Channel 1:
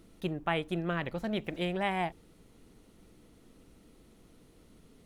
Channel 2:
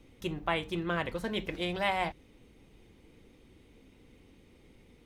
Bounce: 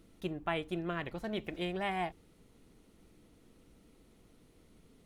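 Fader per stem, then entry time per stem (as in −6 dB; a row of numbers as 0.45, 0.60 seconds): −4.0, −14.5 decibels; 0.00, 0.00 seconds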